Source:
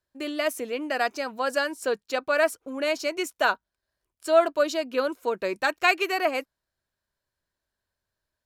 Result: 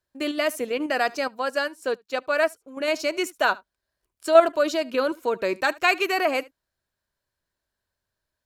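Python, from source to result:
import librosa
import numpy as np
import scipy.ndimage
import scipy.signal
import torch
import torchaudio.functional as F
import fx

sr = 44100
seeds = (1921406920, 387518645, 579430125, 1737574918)

p1 = fx.level_steps(x, sr, step_db=16)
p2 = x + (p1 * librosa.db_to_amplitude(2.5))
p3 = p2 + 10.0 ** (-22.5 / 20.0) * np.pad(p2, (int(74 * sr / 1000.0), 0))[:len(p2)]
p4 = fx.upward_expand(p3, sr, threshold_db=-37.0, expansion=1.5, at=(1.28, 2.88))
y = p4 * librosa.db_to_amplitude(-1.5)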